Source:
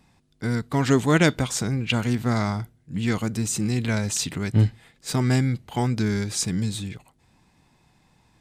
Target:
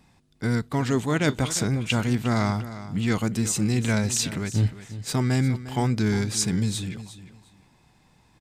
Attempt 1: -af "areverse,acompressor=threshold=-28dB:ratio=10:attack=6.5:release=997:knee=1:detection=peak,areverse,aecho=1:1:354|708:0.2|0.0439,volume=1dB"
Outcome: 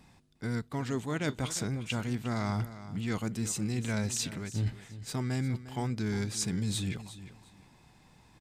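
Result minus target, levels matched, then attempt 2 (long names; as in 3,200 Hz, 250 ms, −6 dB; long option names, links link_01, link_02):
downward compressor: peak gain reduction +9.5 dB
-af "areverse,acompressor=threshold=-17.5dB:ratio=10:attack=6.5:release=997:knee=1:detection=peak,areverse,aecho=1:1:354|708:0.2|0.0439,volume=1dB"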